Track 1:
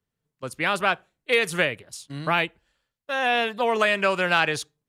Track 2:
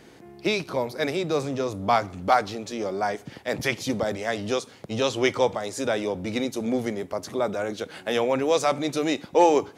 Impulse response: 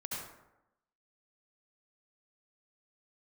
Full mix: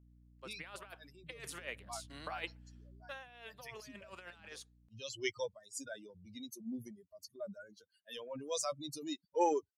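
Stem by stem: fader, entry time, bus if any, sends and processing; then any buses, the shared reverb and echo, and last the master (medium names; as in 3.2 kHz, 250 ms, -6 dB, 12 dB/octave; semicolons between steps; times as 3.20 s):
1.21 s -20 dB -> 1.93 s -13 dB -> 2.96 s -13 dB -> 3.24 s -24 dB, 0.00 s, no send, Bessel high-pass 530 Hz, order 2; compressor with a negative ratio -28 dBFS, ratio -0.5; hum 60 Hz, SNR 11 dB
-9.5 dB, 0.00 s, no send, expander on every frequency bin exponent 3; treble shelf 3.8 kHz +11.5 dB; transient shaper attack -3 dB, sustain +5 dB; auto duck -12 dB, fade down 0.70 s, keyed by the first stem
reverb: none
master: none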